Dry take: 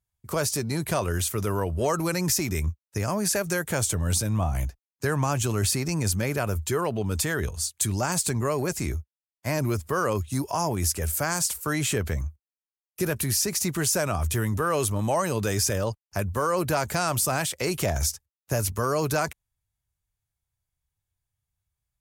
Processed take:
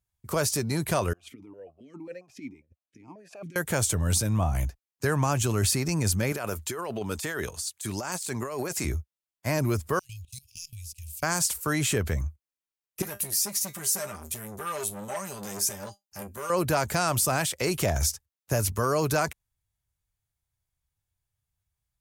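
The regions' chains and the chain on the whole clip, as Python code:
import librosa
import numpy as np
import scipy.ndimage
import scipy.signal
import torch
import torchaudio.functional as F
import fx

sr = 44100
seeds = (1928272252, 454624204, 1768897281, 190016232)

y = fx.chain(x, sr, fx.low_shelf(hz=350.0, db=7.0),
    fx.over_compress(threshold_db=-28.0, ratio=-0.5),
    fx.vowel_held(hz=7.4), at=(1.13, 3.56))
y = fx.chain(y, sr, fx.highpass(hz=380.0, slope=6),
    fx.over_compress(threshold_db=-32.0, ratio=-1.0), at=(6.32, 8.85))
y = fx.chain(y, sr, fx.law_mismatch(coded='A'),
    fx.cheby1_bandstop(low_hz=110.0, high_hz=2500.0, order=5),
    fx.level_steps(step_db=20), at=(9.99, 11.23))
y = fx.chain(y, sr, fx.high_shelf(hz=5500.0, db=12.0),
    fx.comb_fb(f0_hz=200.0, decay_s=0.15, harmonics='all', damping=0.0, mix_pct=90),
    fx.transformer_sat(knee_hz=3000.0), at=(13.02, 16.5))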